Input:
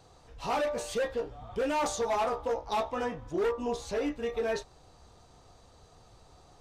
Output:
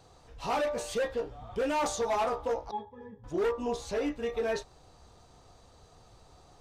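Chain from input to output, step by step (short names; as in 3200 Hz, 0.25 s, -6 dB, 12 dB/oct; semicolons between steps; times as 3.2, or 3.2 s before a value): 2.71–3.24 octave resonator G#, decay 0.14 s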